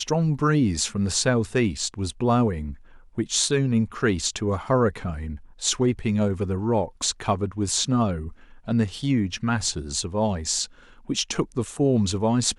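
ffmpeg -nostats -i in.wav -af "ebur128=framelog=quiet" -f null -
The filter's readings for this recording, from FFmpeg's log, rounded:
Integrated loudness:
  I:         -24.2 LUFS
  Threshold: -34.4 LUFS
Loudness range:
  LRA:         1.9 LU
  Threshold: -44.7 LUFS
  LRA low:   -25.6 LUFS
  LRA high:  -23.8 LUFS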